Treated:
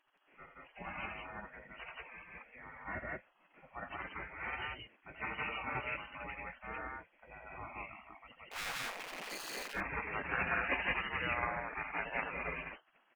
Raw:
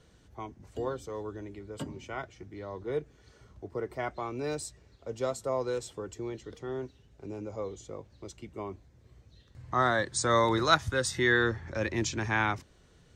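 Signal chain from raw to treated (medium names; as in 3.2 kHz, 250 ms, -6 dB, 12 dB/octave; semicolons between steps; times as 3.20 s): knee-point frequency compression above 1.8 kHz 4:1; spectral noise reduction 7 dB; 8.51–9.63 s: power-law waveshaper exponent 0.35; loudspeakers at several distances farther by 29 m -8 dB, 60 m 0 dB; spectral gate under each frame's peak -20 dB weak; trim +5.5 dB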